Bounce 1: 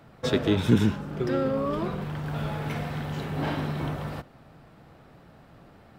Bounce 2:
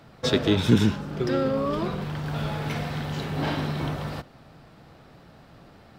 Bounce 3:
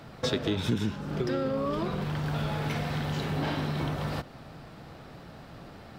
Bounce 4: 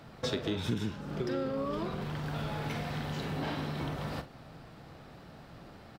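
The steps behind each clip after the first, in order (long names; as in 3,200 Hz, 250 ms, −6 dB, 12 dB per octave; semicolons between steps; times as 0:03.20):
parametric band 4,700 Hz +6 dB 1.2 octaves; level +1.5 dB
downward compressor 3 to 1, threshold −33 dBFS, peak gain reduction 15.5 dB; level +4 dB
double-tracking delay 44 ms −12 dB; level −4.5 dB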